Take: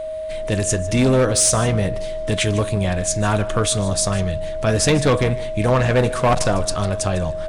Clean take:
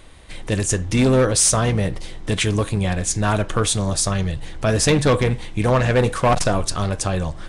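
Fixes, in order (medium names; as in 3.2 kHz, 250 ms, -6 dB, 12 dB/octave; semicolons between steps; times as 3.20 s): clip repair -10 dBFS; band-stop 630 Hz, Q 30; inverse comb 152 ms -18 dB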